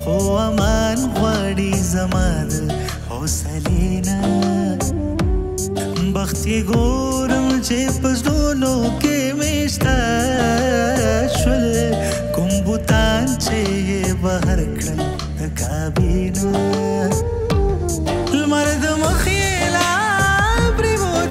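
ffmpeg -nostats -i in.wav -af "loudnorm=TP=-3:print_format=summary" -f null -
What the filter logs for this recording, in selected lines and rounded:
Input Integrated:    -18.0 LUFS
Input True Peak:      -5.4 dBTP
Input LRA:             3.2 LU
Input Threshold:     -28.0 LUFS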